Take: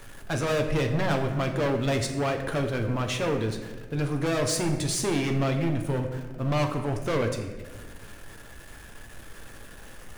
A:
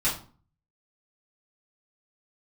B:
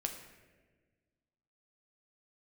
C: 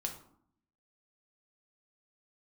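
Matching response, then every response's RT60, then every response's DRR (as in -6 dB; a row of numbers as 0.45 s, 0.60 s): B; 0.40 s, 1.4 s, 0.65 s; -10.0 dB, 3.5 dB, 2.0 dB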